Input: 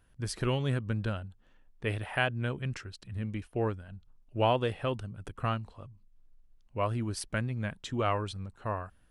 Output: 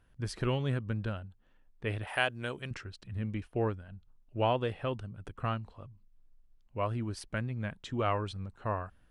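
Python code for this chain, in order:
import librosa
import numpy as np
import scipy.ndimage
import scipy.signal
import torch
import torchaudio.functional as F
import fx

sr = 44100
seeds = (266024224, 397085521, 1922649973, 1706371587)

y = fx.bass_treble(x, sr, bass_db=-10, treble_db=13, at=(2.07, 2.71))
y = fx.rider(y, sr, range_db=10, speed_s=2.0)
y = fx.high_shelf(y, sr, hz=7100.0, db=-10.5)
y = F.gain(torch.from_numpy(y), -2.5).numpy()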